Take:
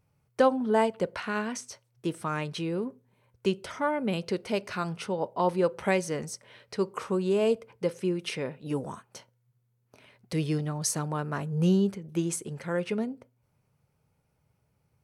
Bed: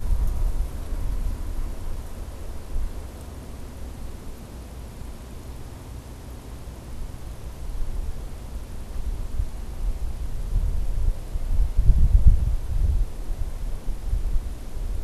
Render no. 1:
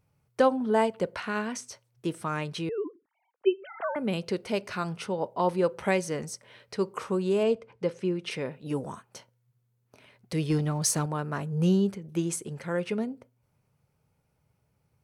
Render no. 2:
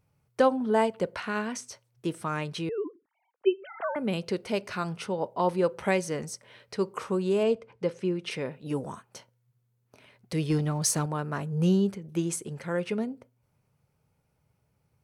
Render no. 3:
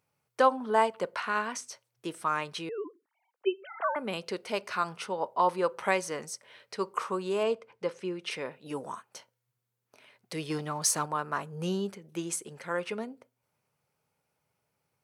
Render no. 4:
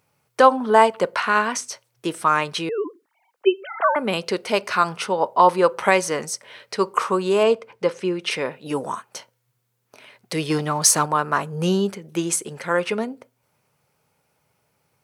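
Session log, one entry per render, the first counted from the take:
0:02.69–0:03.96: three sine waves on the formant tracks; 0:07.43–0:08.31: high-frequency loss of the air 70 metres; 0:10.50–0:11.06: leveller curve on the samples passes 1
no processing that can be heard
high-pass filter 570 Hz 6 dB per octave; dynamic equaliser 1,100 Hz, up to +7 dB, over −47 dBFS, Q 1.9
level +11 dB; brickwall limiter −2 dBFS, peak gain reduction 2.5 dB

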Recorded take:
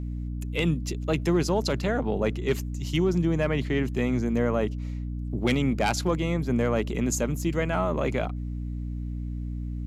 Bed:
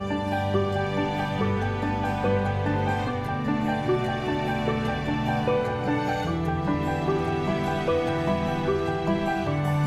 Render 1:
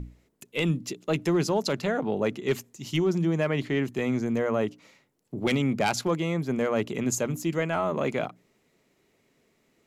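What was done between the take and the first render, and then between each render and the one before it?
mains-hum notches 60/120/180/240/300 Hz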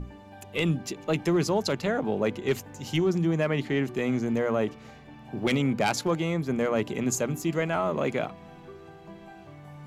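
mix in bed −21 dB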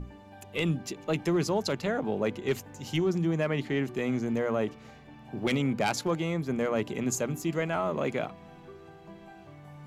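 level −2.5 dB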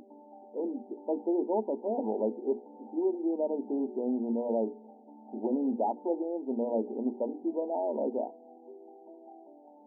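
brick-wall band-pass 210–970 Hz
mains-hum notches 60/120/180/240/300/360/420/480 Hz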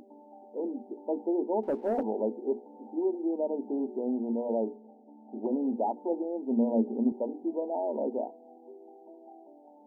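0:01.63–0:02.03: leveller curve on the samples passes 1
0:04.76–0:05.46: Bessel low-pass filter 730 Hz
0:06.12–0:07.12: parametric band 230 Hz +10 dB 0.21 octaves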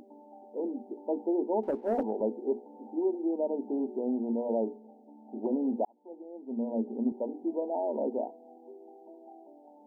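0:01.71–0:02.21: multiband upward and downward expander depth 100%
0:05.85–0:07.50: fade in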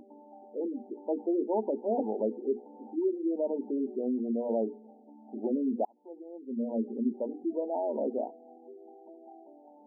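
gate on every frequency bin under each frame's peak −20 dB strong

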